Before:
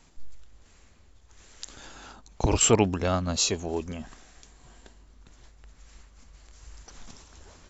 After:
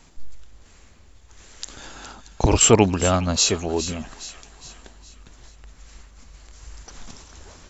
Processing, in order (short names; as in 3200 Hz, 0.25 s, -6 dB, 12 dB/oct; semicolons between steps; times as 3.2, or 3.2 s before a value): thin delay 0.413 s, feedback 48%, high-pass 1400 Hz, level -11.5 dB; gain +6 dB